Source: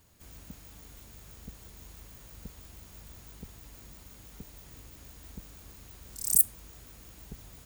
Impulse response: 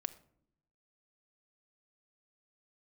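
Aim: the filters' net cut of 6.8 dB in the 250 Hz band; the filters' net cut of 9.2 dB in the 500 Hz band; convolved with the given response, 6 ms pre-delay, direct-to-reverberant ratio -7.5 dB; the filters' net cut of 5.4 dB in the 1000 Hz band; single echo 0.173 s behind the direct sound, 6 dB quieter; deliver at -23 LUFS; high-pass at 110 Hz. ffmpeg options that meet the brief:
-filter_complex "[0:a]highpass=110,equalizer=f=250:t=o:g=-7.5,equalizer=f=500:t=o:g=-8.5,equalizer=f=1k:t=o:g=-4,aecho=1:1:173:0.501,asplit=2[a][b];[1:a]atrim=start_sample=2205,adelay=6[c];[b][c]afir=irnorm=-1:irlink=0,volume=8.5dB[d];[a][d]amix=inputs=2:normalize=0,volume=-6.5dB"

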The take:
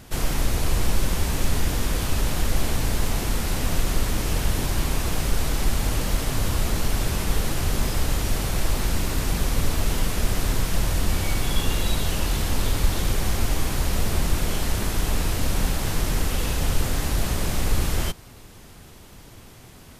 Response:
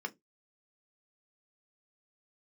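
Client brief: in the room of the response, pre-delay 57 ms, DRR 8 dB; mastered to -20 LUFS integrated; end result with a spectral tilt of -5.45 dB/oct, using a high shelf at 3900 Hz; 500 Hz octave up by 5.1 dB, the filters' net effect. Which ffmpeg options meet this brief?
-filter_complex "[0:a]equalizer=f=500:t=o:g=6.5,highshelf=f=3.9k:g=-8.5,asplit=2[a][b];[1:a]atrim=start_sample=2205,adelay=57[c];[b][c]afir=irnorm=-1:irlink=0,volume=-9.5dB[d];[a][d]amix=inputs=2:normalize=0,volume=6dB"

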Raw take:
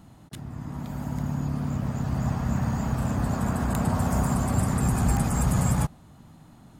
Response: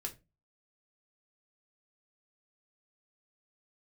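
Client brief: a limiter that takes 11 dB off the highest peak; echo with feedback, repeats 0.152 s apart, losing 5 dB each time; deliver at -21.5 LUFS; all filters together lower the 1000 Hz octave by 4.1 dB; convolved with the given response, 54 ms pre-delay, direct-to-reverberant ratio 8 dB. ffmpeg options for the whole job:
-filter_complex "[0:a]equalizer=f=1k:t=o:g=-5.5,alimiter=limit=-22dB:level=0:latency=1,aecho=1:1:152|304|456|608|760|912|1064:0.562|0.315|0.176|0.0988|0.0553|0.031|0.0173,asplit=2[a][b];[1:a]atrim=start_sample=2205,adelay=54[c];[b][c]afir=irnorm=-1:irlink=0,volume=-7dB[d];[a][d]amix=inputs=2:normalize=0,volume=7.5dB"

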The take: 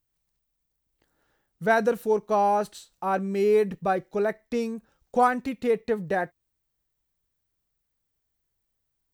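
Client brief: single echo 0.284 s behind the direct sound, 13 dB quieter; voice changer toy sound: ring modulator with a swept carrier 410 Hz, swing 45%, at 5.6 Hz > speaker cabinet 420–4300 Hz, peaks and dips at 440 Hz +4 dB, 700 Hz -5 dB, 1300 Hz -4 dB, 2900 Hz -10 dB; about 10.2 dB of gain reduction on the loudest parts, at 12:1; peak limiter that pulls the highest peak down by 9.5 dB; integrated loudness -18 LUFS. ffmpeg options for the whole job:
-af "acompressor=threshold=-27dB:ratio=12,alimiter=level_in=4.5dB:limit=-24dB:level=0:latency=1,volume=-4.5dB,aecho=1:1:284:0.224,aeval=exprs='val(0)*sin(2*PI*410*n/s+410*0.45/5.6*sin(2*PI*5.6*n/s))':c=same,highpass=420,equalizer=f=440:t=q:w=4:g=4,equalizer=f=700:t=q:w=4:g=-5,equalizer=f=1.3k:t=q:w=4:g=-4,equalizer=f=2.9k:t=q:w=4:g=-10,lowpass=f=4.3k:w=0.5412,lowpass=f=4.3k:w=1.3066,volume=26dB"

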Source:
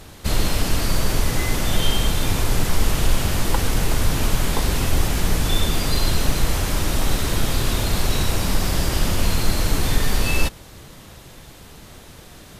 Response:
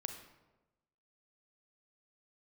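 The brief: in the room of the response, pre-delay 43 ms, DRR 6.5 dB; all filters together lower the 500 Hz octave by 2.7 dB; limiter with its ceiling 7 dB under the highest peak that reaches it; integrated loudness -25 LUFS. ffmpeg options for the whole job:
-filter_complex "[0:a]equalizer=f=500:t=o:g=-3.5,alimiter=limit=-11dB:level=0:latency=1,asplit=2[a][b];[1:a]atrim=start_sample=2205,adelay=43[c];[b][c]afir=irnorm=-1:irlink=0,volume=-5.5dB[d];[a][d]amix=inputs=2:normalize=0,volume=-1.5dB"

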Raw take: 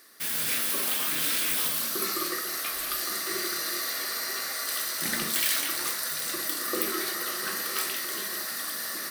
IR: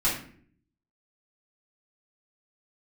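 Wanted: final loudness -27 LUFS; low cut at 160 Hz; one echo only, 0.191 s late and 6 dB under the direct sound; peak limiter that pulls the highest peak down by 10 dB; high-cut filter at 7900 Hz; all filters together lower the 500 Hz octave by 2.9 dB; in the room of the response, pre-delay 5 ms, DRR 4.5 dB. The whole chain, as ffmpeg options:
-filter_complex "[0:a]highpass=160,lowpass=7.9k,equalizer=f=500:t=o:g=-4,alimiter=level_in=1.5dB:limit=-24dB:level=0:latency=1,volume=-1.5dB,aecho=1:1:191:0.501,asplit=2[a][b];[1:a]atrim=start_sample=2205,adelay=5[c];[b][c]afir=irnorm=-1:irlink=0,volume=-15.5dB[d];[a][d]amix=inputs=2:normalize=0,volume=4.5dB"

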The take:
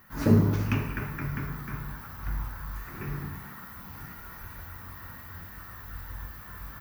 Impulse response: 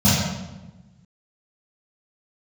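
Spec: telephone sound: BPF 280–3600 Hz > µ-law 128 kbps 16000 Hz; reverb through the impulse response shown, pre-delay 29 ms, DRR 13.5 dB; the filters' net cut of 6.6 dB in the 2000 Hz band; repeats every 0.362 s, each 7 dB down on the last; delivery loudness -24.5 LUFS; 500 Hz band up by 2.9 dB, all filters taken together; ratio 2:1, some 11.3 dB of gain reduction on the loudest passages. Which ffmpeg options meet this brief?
-filter_complex "[0:a]equalizer=f=500:t=o:g=5,equalizer=f=2k:t=o:g=-9,acompressor=threshold=-35dB:ratio=2,aecho=1:1:362|724|1086|1448|1810:0.447|0.201|0.0905|0.0407|0.0183,asplit=2[a][b];[1:a]atrim=start_sample=2205,adelay=29[c];[b][c]afir=irnorm=-1:irlink=0,volume=-33.5dB[d];[a][d]amix=inputs=2:normalize=0,highpass=280,lowpass=3.6k,volume=18.5dB" -ar 16000 -c:a pcm_mulaw

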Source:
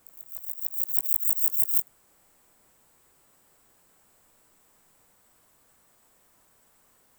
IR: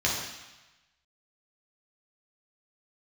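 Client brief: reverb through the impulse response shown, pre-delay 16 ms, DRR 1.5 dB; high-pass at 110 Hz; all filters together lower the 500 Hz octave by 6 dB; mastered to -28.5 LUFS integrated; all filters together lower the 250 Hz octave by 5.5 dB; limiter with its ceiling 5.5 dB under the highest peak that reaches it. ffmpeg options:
-filter_complex "[0:a]highpass=110,equalizer=f=250:t=o:g=-5,equalizer=f=500:t=o:g=-6.5,alimiter=limit=-7.5dB:level=0:latency=1,asplit=2[a][b];[1:a]atrim=start_sample=2205,adelay=16[c];[b][c]afir=irnorm=-1:irlink=0,volume=-13dB[d];[a][d]amix=inputs=2:normalize=0,volume=-3.5dB"

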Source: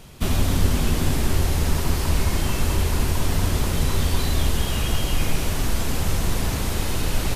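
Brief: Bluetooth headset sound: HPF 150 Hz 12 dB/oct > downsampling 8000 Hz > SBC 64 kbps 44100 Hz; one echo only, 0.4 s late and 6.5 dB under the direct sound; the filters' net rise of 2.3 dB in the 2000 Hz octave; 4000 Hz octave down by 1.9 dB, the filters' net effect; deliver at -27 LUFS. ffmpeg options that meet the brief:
-af "highpass=150,equalizer=f=2k:t=o:g=4,equalizer=f=4k:t=o:g=-4,aecho=1:1:400:0.473,aresample=8000,aresample=44100,volume=0.5dB" -ar 44100 -c:a sbc -b:a 64k

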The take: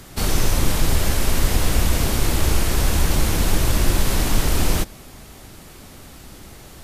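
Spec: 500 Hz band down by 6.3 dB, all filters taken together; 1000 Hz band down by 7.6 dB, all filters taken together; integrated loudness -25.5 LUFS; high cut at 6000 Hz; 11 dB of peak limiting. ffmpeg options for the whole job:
-af "lowpass=6k,equalizer=f=500:t=o:g=-6.5,equalizer=f=1k:t=o:g=-8,volume=3.5dB,alimiter=limit=-13dB:level=0:latency=1"

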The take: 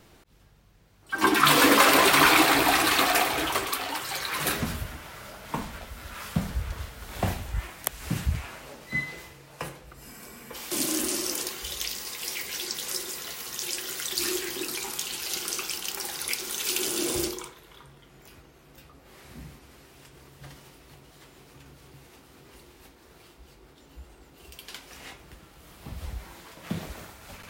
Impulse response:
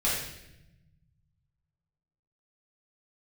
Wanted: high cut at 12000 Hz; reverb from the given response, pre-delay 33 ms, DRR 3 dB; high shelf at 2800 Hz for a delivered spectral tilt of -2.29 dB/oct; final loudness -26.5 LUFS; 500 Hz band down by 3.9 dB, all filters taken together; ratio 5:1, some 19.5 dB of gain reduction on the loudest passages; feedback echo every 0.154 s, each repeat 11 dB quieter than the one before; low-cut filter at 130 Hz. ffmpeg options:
-filter_complex "[0:a]highpass=130,lowpass=12k,equalizer=f=500:t=o:g=-5.5,highshelf=f=2.8k:g=5,acompressor=threshold=-37dB:ratio=5,aecho=1:1:154|308|462:0.282|0.0789|0.0221,asplit=2[a][b];[1:a]atrim=start_sample=2205,adelay=33[c];[b][c]afir=irnorm=-1:irlink=0,volume=-13.5dB[d];[a][d]amix=inputs=2:normalize=0,volume=10dB"

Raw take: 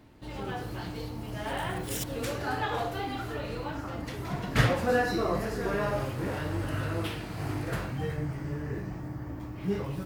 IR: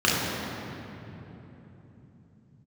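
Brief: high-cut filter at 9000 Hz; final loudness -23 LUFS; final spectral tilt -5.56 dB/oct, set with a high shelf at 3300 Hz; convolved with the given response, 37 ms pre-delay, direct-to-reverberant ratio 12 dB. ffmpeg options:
-filter_complex "[0:a]lowpass=9k,highshelf=f=3.3k:g=4,asplit=2[a][b];[1:a]atrim=start_sample=2205,adelay=37[c];[b][c]afir=irnorm=-1:irlink=0,volume=-30.5dB[d];[a][d]amix=inputs=2:normalize=0,volume=8.5dB"

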